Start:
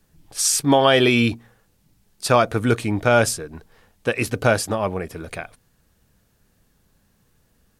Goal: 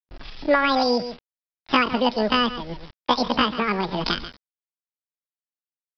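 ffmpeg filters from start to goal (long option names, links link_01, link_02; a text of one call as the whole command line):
ffmpeg -i in.wav -filter_complex "[0:a]agate=range=-25dB:threshold=-51dB:ratio=16:detection=peak,dynaudnorm=framelen=140:gausssize=9:maxgain=12dB,asetrate=91287,aresample=44100,lowshelf=frequency=78:gain=10,aecho=1:1:83:0.188,acrossover=split=190|520[link_01][link_02][link_03];[link_01]acompressor=threshold=-39dB:ratio=4[link_04];[link_02]acompressor=threshold=-33dB:ratio=4[link_05];[link_03]acompressor=threshold=-26dB:ratio=4[link_06];[link_04][link_05][link_06]amix=inputs=3:normalize=0,aresample=11025,acrusher=bits=7:mix=0:aa=0.000001,aresample=44100,adynamicequalizer=threshold=0.01:dfrequency=1100:dqfactor=0.94:tfrequency=1100:tqfactor=0.94:attack=5:release=100:ratio=0.375:range=2.5:mode=cutabove:tftype=bell,atempo=0.63,volume=6dB" out.wav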